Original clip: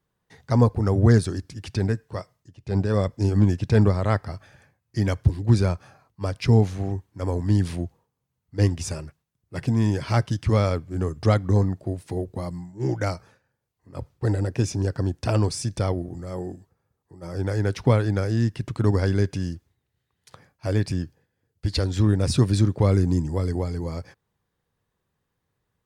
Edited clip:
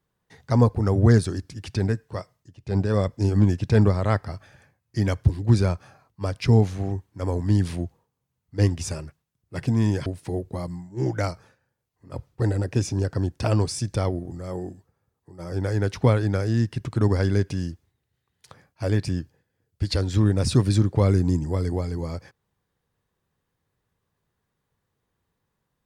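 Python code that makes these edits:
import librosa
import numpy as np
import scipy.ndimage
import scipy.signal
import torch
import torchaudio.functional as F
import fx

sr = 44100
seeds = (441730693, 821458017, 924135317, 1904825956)

y = fx.edit(x, sr, fx.cut(start_s=10.06, length_s=1.83), tone=tone)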